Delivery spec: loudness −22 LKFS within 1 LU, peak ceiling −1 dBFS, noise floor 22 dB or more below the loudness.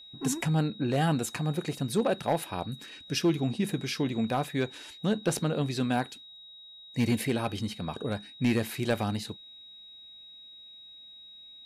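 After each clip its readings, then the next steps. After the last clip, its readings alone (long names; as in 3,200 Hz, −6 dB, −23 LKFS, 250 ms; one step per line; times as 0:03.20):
share of clipped samples 0.3%; peaks flattened at −18.5 dBFS; interfering tone 3,800 Hz; level of the tone −47 dBFS; integrated loudness −30.0 LKFS; sample peak −18.5 dBFS; target loudness −22.0 LKFS
→ clipped peaks rebuilt −18.5 dBFS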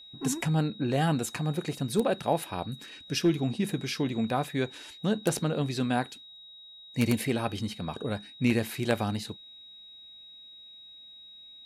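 share of clipped samples 0.0%; interfering tone 3,800 Hz; level of the tone −47 dBFS
→ notch filter 3,800 Hz, Q 30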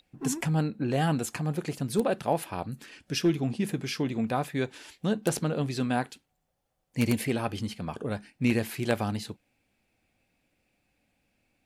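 interfering tone none found; integrated loudness −30.0 LKFS; sample peak −9.5 dBFS; target loudness −22.0 LKFS
→ level +8 dB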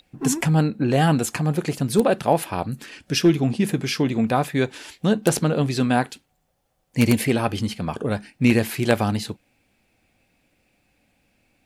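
integrated loudness −22.0 LKFS; sample peak −1.5 dBFS; background noise floor −69 dBFS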